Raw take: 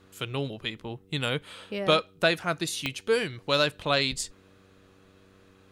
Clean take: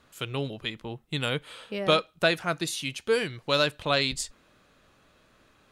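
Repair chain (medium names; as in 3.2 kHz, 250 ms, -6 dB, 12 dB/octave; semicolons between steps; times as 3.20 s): de-click; de-hum 95.5 Hz, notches 5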